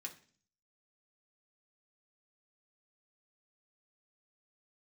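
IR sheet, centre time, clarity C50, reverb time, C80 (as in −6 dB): 10 ms, 13.5 dB, 0.45 s, 18.0 dB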